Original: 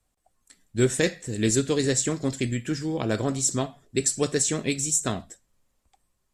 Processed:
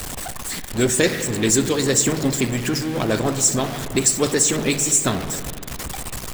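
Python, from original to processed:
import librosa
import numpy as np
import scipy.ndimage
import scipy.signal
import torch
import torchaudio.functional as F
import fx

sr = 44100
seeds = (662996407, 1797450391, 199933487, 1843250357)

y = x + 0.5 * 10.0 ** (-26.0 / 20.0) * np.sign(x)
y = fx.rev_spring(y, sr, rt60_s=2.7, pass_ms=(45, 58), chirp_ms=40, drr_db=7.5)
y = fx.hpss(y, sr, part='harmonic', gain_db=-9)
y = y * librosa.db_to_amplitude(6.0)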